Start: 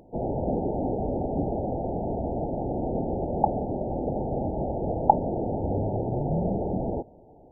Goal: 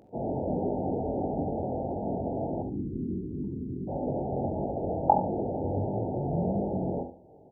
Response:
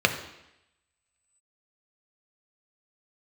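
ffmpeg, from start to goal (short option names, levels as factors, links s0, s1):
-filter_complex "[0:a]highpass=73,flanger=delay=19.5:depth=3.6:speed=1.5,asplit=3[s0][s1][s2];[s0]afade=t=out:st=2.61:d=0.02[s3];[s1]asuperstop=centerf=710:order=8:qfactor=0.67,afade=t=in:st=2.61:d=0.02,afade=t=out:st=3.87:d=0.02[s4];[s2]afade=t=in:st=3.87:d=0.02[s5];[s3][s4][s5]amix=inputs=3:normalize=0,asplit=2[s6][s7];[s7]adelay=44,volume=0.251[s8];[s6][s8]amix=inputs=2:normalize=0,aecho=1:1:71|142|213:0.335|0.0603|0.0109,asplit=2[s9][s10];[1:a]atrim=start_sample=2205,atrim=end_sample=3087,adelay=56[s11];[s10][s11]afir=irnorm=-1:irlink=0,volume=0.0316[s12];[s9][s12]amix=inputs=2:normalize=0"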